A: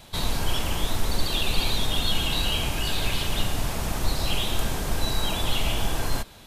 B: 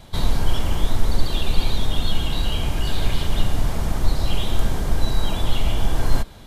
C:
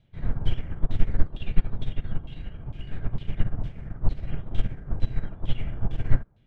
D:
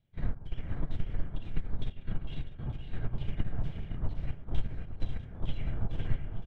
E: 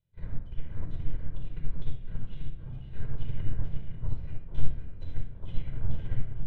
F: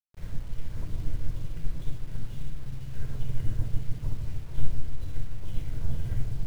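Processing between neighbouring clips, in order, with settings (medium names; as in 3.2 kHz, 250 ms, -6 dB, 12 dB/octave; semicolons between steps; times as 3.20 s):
tilt EQ -1.5 dB/octave; band-stop 2.6 kHz, Q 14; gain riding 0.5 s
ten-band graphic EQ 125 Hz +9 dB, 1 kHz -11 dB, 4 kHz -10 dB; LFO low-pass saw down 2.2 Hz 950–3600 Hz; upward expansion 2.5:1, over -21 dBFS
compression 6:1, threshold -24 dBFS, peak gain reduction 15 dB; trance gate ".x.xxxxx.xx.xx" 87 bpm -12 dB; multi-tap echo 513/543/649/878 ms -9/-9/-15/-18.5 dB
simulated room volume 3700 m³, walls furnished, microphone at 4.9 m; upward expansion 1.5:1, over -22 dBFS; trim -3 dB
on a send: bucket-brigade echo 151 ms, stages 1024, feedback 63%, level -6 dB; on the sum: bit crusher 9-bit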